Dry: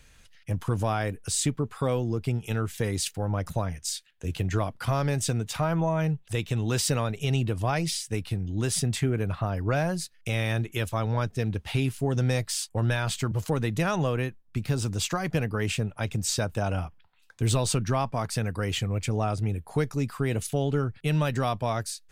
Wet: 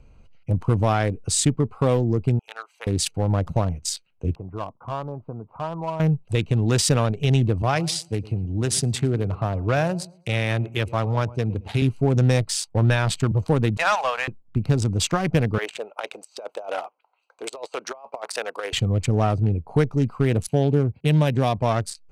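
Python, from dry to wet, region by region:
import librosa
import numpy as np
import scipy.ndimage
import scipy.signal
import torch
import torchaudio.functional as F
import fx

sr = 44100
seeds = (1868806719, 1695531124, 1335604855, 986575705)

y = fx.chain(x, sr, fx.highpass(hz=790.0, slope=24),
    fx.upward_expand(threshold_db=-49.0, expansion=1.5), at=(2.39, 2.87))
y = fx.chain(y, sr, fx.ladder_lowpass(hz=1200.0, resonance_pct=60),
    fx.low_shelf(hz=140.0, db=-8.5), at=(4.35, 6.0))
y = fx.chain(y, sr, fx.highpass(hz=75.0, slope=24),
    fx.peak_eq(hz=200.0, db=-4.0, octaves=2.5),
    fx.echo_feedback(ms=111, feedback_pct=28, wet_db=-17.5), at=(7.62, 11.82))
y = fx.chain(y, sr, fx.cheby2_highpass(hz=350.0, order=4, stop_db=40),
    fx.high_shelf(hz=5700.0, db=-11.0),
    fx.leveller(passes=2), at=(13.77, 14.28))
y = fx.chain(y, sr, fx.highpass(hz=510.0, slope=24),
    fx.over_compress(threshold_db=-35.0, ratio=-0.5), at=(15.58, 18.73))
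y = fx.chain(y, sr, fx.highpass(hz=58.0, slope=12),
    fx.peak_eq(hz=1300.0, db=-15.0, octaves=0.24), at=(20.47, 21.58))
y = fx.wiener(y, sr, points=25)
y = scipy.signal.sosfilt(scipy.signal.butter(2, 11000.0, 'lowpass', fs=sr, output='sos'), y)
y = F.gain(torch.from_numpy(y), 7.0).numpy()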